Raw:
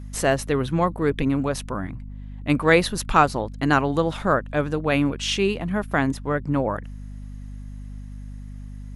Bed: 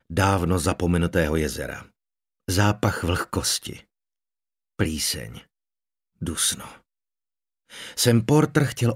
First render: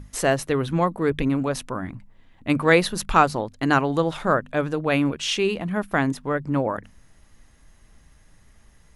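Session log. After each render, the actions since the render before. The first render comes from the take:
mains-hum notches 50/100/150/200/250 Hz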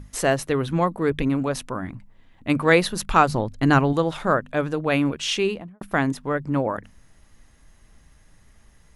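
0:03.28–0:03.93: low-shelf EQ 170 Hz +12 dB
0:05.41–0:05.81: fade out and dull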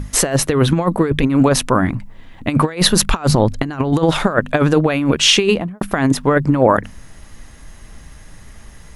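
compressor whose output falls as the input rises −24 dBFS, ratio −0.5
boost into a limiter +11 dB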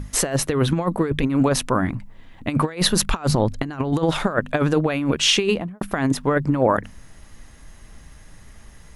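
level −5.5 dB

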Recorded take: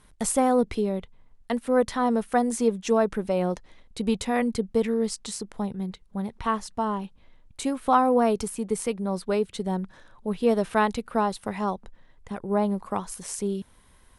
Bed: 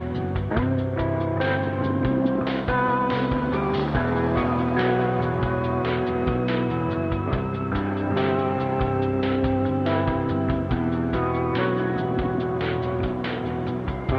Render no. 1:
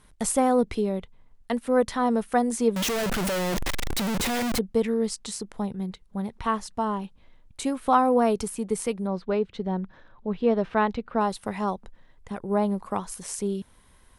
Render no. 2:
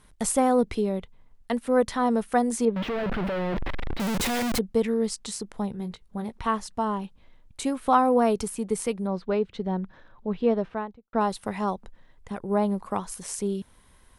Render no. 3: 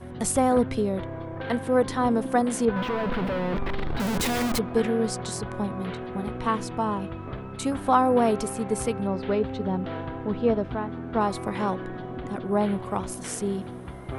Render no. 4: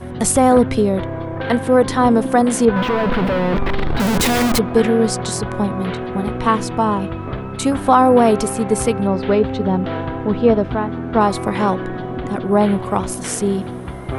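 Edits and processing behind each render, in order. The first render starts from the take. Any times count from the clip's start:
0:02.76–0:04.59: sign of each sample alone; 0:09.07–0:11.21: high-frequency loss of the air 210 metres
0:02.65–0:04.00: high-frequency loss of the air 410 metres; 0:05.71–0:06.32: double-tracking delay 18 ms −9 dB; 0:10.38–0:11.13: fade out and dull
mix in bed −11 dB
level +9.5 dB; brickwall limiter −2 dBFS, peak gain reduction 3 dB

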